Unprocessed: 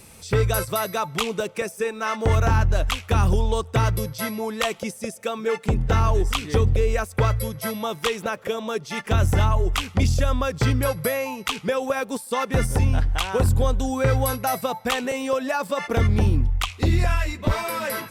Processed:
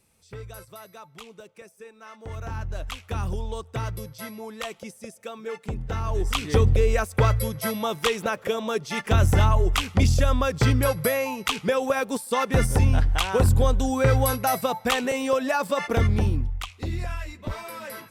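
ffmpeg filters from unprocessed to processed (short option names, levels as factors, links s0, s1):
-af "volume=1.06,afade=t=in:st=2.22:d=0.75:silence=0.334965,afade=t=in:st=6.04:d=0.42:silence=0.316228,afade=t=out:st=15.76:d=0.94:silence=0.298538"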